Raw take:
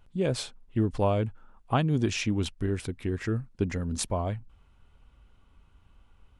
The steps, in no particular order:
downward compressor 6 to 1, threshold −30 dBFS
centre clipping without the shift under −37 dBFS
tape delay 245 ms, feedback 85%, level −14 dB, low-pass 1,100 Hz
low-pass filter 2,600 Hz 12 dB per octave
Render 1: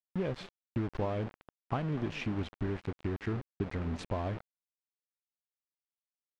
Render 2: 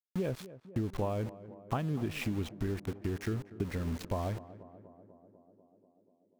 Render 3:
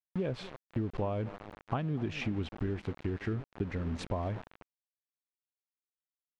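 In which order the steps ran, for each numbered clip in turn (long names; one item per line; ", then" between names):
downward compressor, then tape delay, then centre clipping without the shift, then low-pass filter
low-pass filter, then centre clipping without the shift, then downward compressor, then tape delay
tape delay, then centre clipping without the shift, then low-pass filter, then downward compressor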